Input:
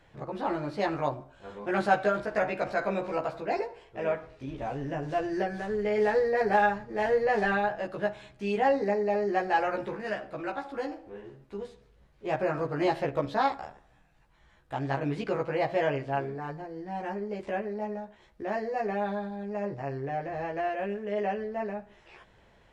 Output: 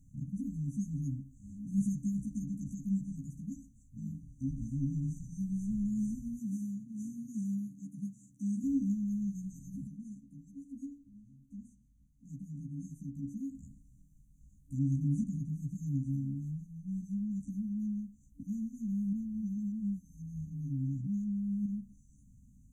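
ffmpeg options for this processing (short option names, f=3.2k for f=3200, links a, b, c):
-filter_complex "[0:a]asettb=1/sr,asplit=3[a][b][c];[a]atrim=end=6.394[d];[b]atrim=start=6.39:end=8.64,asetpts=PTS-STARTPTS,afade=t=in:d=0.004:c=qsin,afade=t=out:st=2.246:d=0.004:c=qsin,highpass=220[e];[c]atrim=start=8.636[f];[d][e]acrossfade=d=0.004:c1=hsin:c2=qsin[g];[g][f]acrossfade=d=0.004:c1=qsin:c2=hsin,asettb=1/sr,asplit=3[h][i][j];[h]atrim=end=9.874[k];[i]atrim=start=9.87:end=13.55,asetpts=PTS-STARTPTS,afade=t=in:d=0.004:c=qsin,afade=t=out:st=3.676:d=0.004:c=qsin,bass=f=250:g=-10,treble=f=4k:g=-8[l];[j]atrim=start=13.546[m];[k][l]acrossfade=d=0.004:c1=hsin:c2=qsin[n];[n][m]acrossfade=d=0.004:c1=qsin:c2=hsin,asplit=3[o][p][q];[o]atrim=end=19.132[r];[p]atrim=start=19.128:end=21.662,asetpts=PTS-STARTPTS,areverse[s];[q]atrim=start=21.658[t];[r][s]acrossfade=d=0.004:c1=hsin:c2=hsin[u];[u][t]acrossfade=d=0.004:c1=hsin:c2=hsin,afftfilt=real='re*(1-between(b*sr/4096,290,5900))':imag='im*(1-between(b*sr/4096,290,5900))':win_size=4096:overlap=0.75,volume=4.5dB"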